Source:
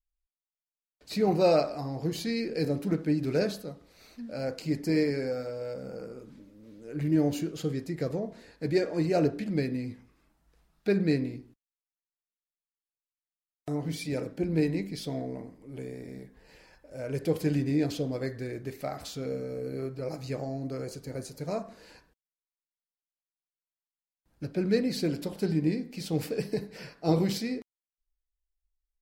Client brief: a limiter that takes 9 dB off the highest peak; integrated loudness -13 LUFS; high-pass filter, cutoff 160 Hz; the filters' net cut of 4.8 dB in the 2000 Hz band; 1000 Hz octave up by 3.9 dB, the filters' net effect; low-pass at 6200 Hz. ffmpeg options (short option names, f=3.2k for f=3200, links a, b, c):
-af "highpass=160,lowpass=6.2k,equalizer=f=1k:t=o:g=8,equalizer=f=2k:t=o:g=-8.5,volume=20dB,alimiter=limit=0dB:level=0:latency=1"